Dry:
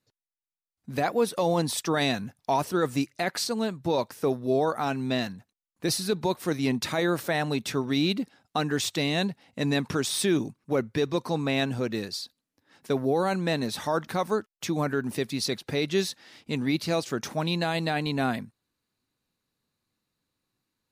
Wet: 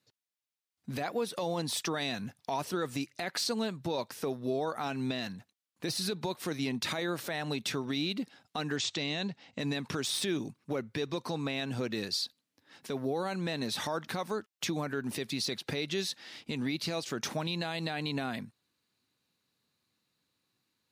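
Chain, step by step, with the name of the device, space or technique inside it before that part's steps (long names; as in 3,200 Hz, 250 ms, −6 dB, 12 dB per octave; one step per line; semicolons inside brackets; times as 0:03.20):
broadcast voice chain (high-pass filter 88 Hz; de-essing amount 55%; downward compressor 4 to 1, threshold −30 dBFS, peak gain reduction 9.5 dB; parametric band 3,500 Hz +5 dB 1.8 octaves; brickwall limiter −22.5 dBFS, peak gain reduction 8 dB)
0:08.76–0:09.60: Butterworth low-pass 7,800 Hz 48 dB per octave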